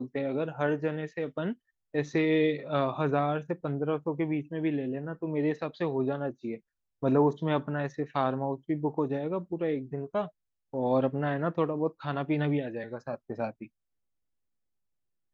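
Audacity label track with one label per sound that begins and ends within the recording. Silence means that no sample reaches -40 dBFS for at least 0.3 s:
1.940000	6.570000	sound
7.030000	10.280000	sound
10.740000	13.650000	sound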